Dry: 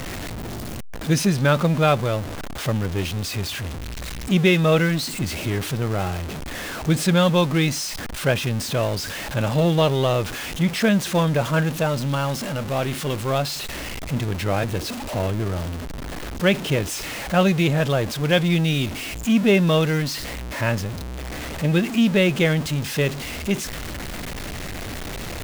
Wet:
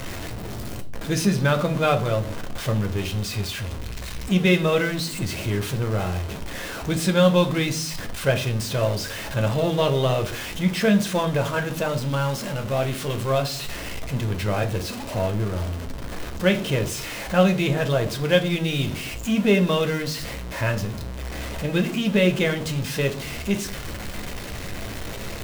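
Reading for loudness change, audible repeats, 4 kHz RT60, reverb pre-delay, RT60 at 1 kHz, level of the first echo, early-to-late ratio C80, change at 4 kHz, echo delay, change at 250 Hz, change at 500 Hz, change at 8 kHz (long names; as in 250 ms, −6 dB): −1.5 dB, no echo audible, 0.40 s, 9 ms, 0.45 s, no echo audible, 19.0 dB, −1.5 dB, no echo audible, −2.0 dB, −0.5 dB, −2.0 dB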